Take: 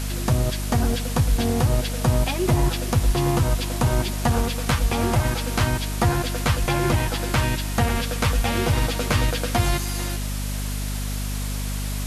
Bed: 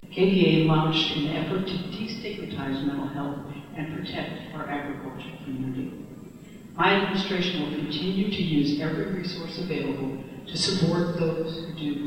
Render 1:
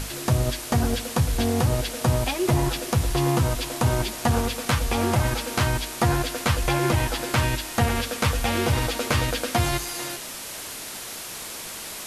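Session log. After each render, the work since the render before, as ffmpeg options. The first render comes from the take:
-af "bandreject=f=50:t=h:w=6,bandreject=f=100:t=h:w=6,bandreject=f=150:t=h:w=6,bandreject=f=200:t=h:w=6,bandreject=f=250:t=h:w=6,bandreject=f=300:t=h:w=6"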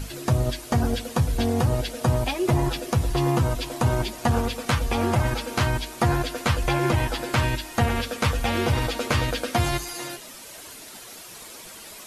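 -af "afftdn=nr=9:nf=-36"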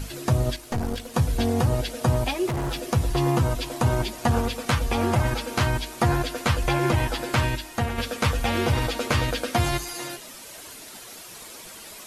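-filter_complex "[0:a]asettb=1/sr,asplit=3[a][b][c];[a]atrim=end=0.564[d];[b]atrim=start=0.56:end=1.14,asetpts=PTS-STARTPTS,afade=t=in:d=0.004:c=qsin,afade=t=out:st=0.576:d=0.004:c=qsin,aeval=exprs='(tanh(12.6*val(0)+0.75)-tanh(0.75))/12.6':c=same[e];[c]atrim=start=1.136[f];[d][e]acrossfade=d=0.004:c1=hsin:c2=qsin[g];[g][f]acrossfade=d=0.004:c1=qsin:c2=hsin,asettb=1/sr,asplit=3[h][i][j];[h]atrim=end=2.474[k];[i]atrim=start=2.47:end=2.93,asetpts=PTS-STARTPTS,afade=t=in:d=0.004:c=qsin,afade=t=out:st=0.456:d=0.004:c=qsin,asoftclip=type=hard:threshold=-24.5dB[l];[j]atrim=start=2.926[m];[k][l]acrossfade=d=0.004:c1=hsin:c2=qsin[n];[n][m]acrossfade=d=0.004:c1=qsin:c2=hsin,asplit=2[o][p];[o]atrim=end=7.98,asetpts=PTS-STARTPTS,afade=t=out:st=7.37:d=0.61:silence=0.501187[q];[p]atrim=start=7.98,asetpts=PTS-STARTPTS,afade=t=in:d=0.004:c=hsin:silence=0.501187[r];[q][r]concat=n=2:v=0:a=1"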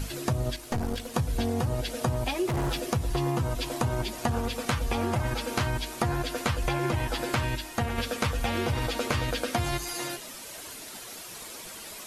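-af "acompressor=threshold=-24dB:ratio=6"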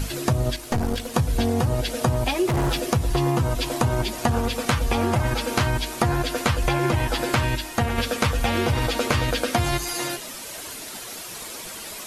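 -af "volume=6dB"

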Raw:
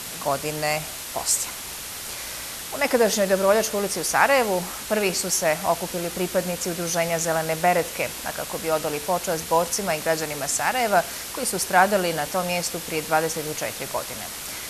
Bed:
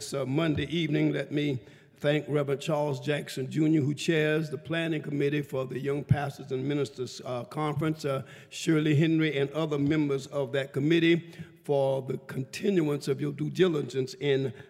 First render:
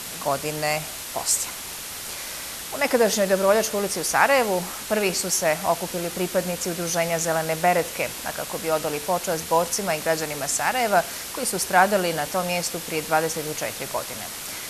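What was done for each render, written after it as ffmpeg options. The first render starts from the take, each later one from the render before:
-af "bandreject=f=60:t=h:w=4,bandreject=f=120:t=h:w=4"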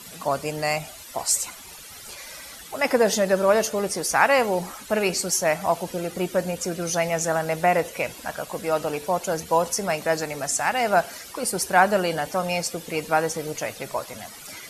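-af "afftdn=nr=13:nf=-35"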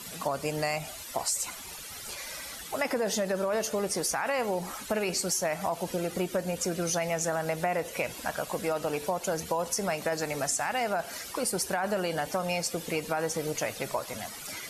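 -af "alimiter=limit=-14dB:level=0:latency=1:release=12,acompressor=threshold=-26dB:ratio=6"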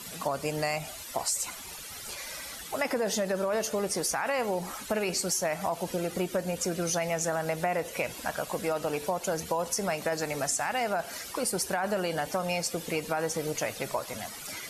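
-af anull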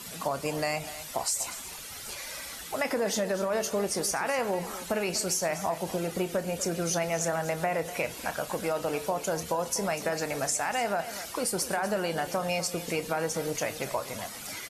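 -filter_complex "[0:a]asplit=2[a][b];[b]adelay=30,volume=-13dB[c];[a][c]amix=inputs=2:normalize=0,aecho=1:1:245:0.2"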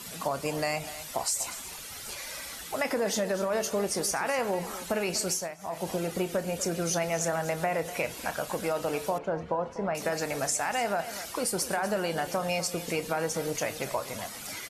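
-filter_complex "[0:a]asettb=1/sr,asplit=3[a][b][c];[a]atrim=end=9.184[d];[b]atrim=start=9.18:end=9.95,asetpts=PTS-STARTPTS,afade=t=in:d=0.004:c=qsin,afade=t=out:st=0.766:d=0.004:c=qsin,lowpass=1.6k[e];[c]atrim=start=9.946[f];[d][e]acrossfade=d=0.004:c1=hsin:c2=qsin[g];[g][f]acrossfade=d=0.004:c1=qsin:c2=hsin,asplit=2[h][i];[h]atrim=end=5.57,asetpts=PTS-STARTPTS,afade=t=out:st=5.3:d=0.27:silence=0.11885[j];[i]atrim=start=5.57,asetpts=PTS-STARTPTS,afade=t=in:d=0.27:silence=0.11885[k];[j][k]concat=n=2:v=0:a=1"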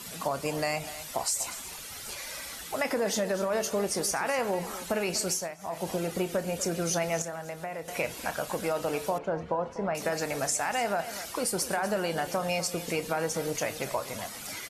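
-filter_complex "[0:a]asplit=3[a][b][c];[a]atrim=end=7.222[d];[b]atrim=start=7.218:end=7.882,asetpts=PTS-STARTPTS,volume=-8dB[e];[c]atrim=start=7.878[f];[d][e]acrossfade=d=0.004:c1=hsin:c2=hsin[g];[g][f]acrossfade=d=0.004:c1=hsin:c2=hsin"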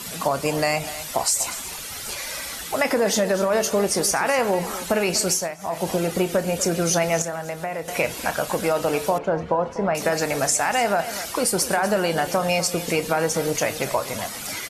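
-af "volume=8dB"

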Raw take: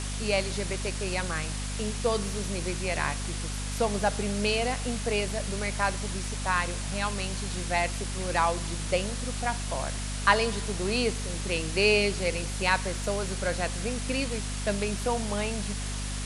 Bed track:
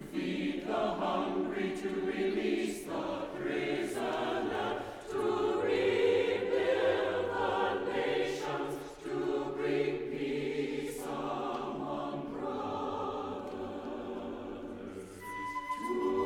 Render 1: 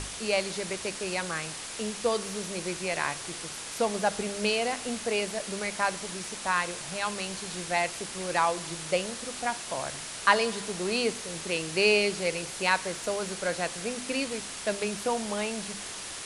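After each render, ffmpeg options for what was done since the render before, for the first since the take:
-af "bandreject=f=50:t=h:w=6,bandreject=f=100:t=h:w=6,bandreject=f=150:t=h:w=6,bandreject=f=200:t=h:w=6,bandreject=f=250:t=h:w=6"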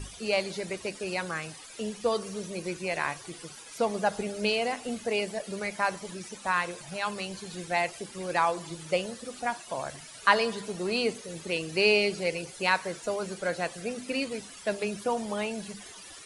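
-af "afftdn=nr=15:nf=-39"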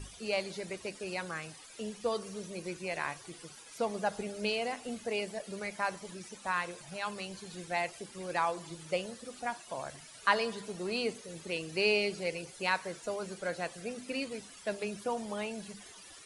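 -af "volume=-5.5dB"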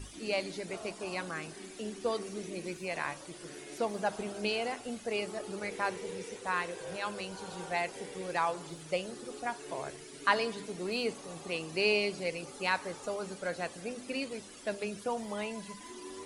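-filter_complex "[1:a]volume=-14.5dB[a];[0:a][a]amix=inputs=2:normalize=0"

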